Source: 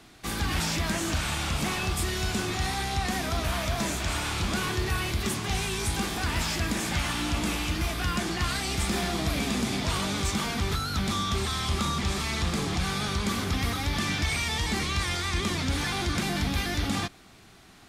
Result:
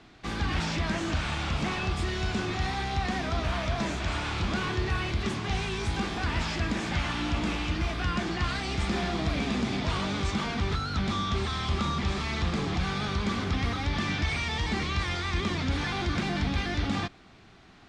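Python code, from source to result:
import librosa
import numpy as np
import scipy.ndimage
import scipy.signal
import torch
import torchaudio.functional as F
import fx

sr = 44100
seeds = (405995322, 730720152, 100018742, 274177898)

y = fx.air_absorb(x, sr, metres=130.0)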